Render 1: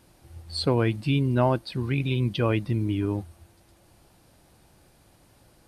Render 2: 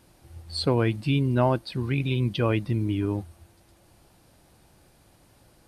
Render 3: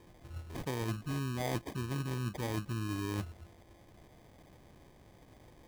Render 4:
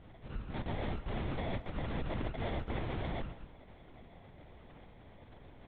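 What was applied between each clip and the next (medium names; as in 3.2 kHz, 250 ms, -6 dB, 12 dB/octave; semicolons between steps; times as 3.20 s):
no audible change
reverse; compression 12:1, threshold -32 dBFS, peak gain reduction 15.5 dB; reverse; sample-and-hold 32×
wavefolder -34.5 dBFS; LPC vocoder at 8 kHz whisper; speakerphone echo 140 ms, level -14 dB; trim +3.5 dB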